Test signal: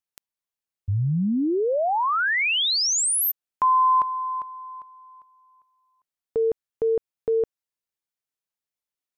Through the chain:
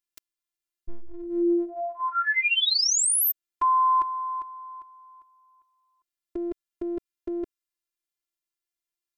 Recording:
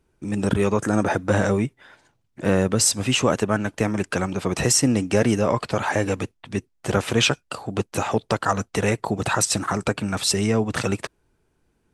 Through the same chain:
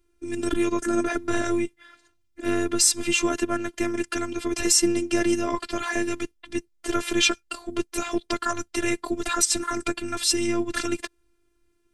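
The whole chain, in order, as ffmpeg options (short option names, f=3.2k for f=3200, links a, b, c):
-af "equalizer=f=760:t=o:w=0.96:g=-10.5,afftfilt=real='hypot(re,im)*cos(PI*b)':imag='0':win_size=512:overlap=0.75,volume=3.5dB"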